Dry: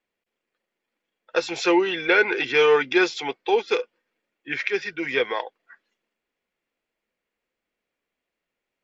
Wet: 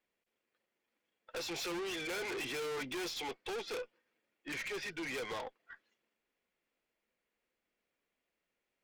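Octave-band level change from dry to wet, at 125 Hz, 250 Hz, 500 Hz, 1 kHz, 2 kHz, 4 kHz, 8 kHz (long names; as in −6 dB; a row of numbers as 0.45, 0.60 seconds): −9.0 dB, −17.0 dB, −19.0 dB, −17.5 dB, −18.0 dB, −12.0 dB, can't be measured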